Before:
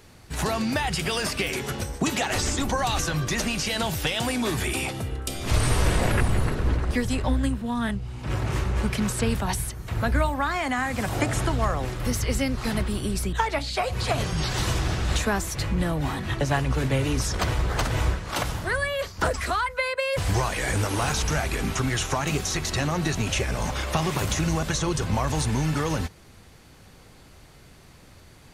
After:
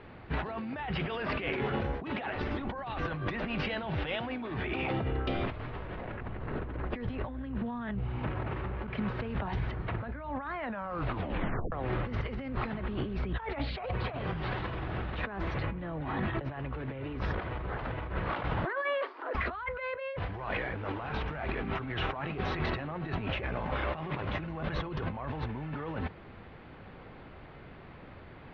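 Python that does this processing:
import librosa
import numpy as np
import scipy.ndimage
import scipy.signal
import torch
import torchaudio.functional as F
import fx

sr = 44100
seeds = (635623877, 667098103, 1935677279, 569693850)

y = fx.cheby_ripple_highpass(x, sr, hz=260.0, ripple_db=6, at=(18.65, 19.35))
y = fx.edit(y, sr, fx.fade_in_from(start_s=8.87, length_s=0.7, floor_db=-12.5),
    fx.tape_stop(start_s=10.54, length_s=1.18), tone=tone)
y = scipy.signal.sosfilt(scipy.signal.bessel(8, 1900.0, 'lowpass', norm='mag', fs=sr, output='sos'), y)
y = fx.low_shelf(y, sr, hz=150.0, db=-7.5)
y = fx.over_compress(y, sr, threshold_db=-35.0, ratio=-1.0)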